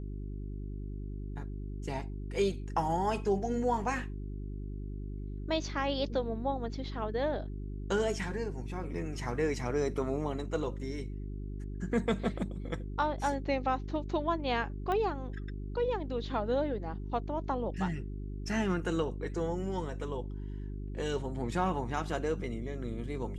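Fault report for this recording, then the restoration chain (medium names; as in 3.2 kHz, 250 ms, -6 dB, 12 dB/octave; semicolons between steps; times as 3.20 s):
hum 50 Hz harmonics 8 -39 dBFS
14.92 s: pop -22 dBFS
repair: de-click; de-hum 50 Hz, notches 8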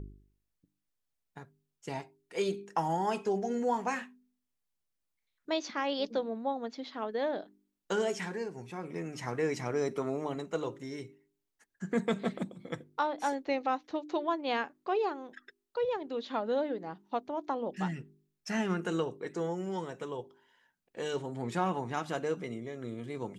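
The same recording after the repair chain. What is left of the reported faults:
nothing left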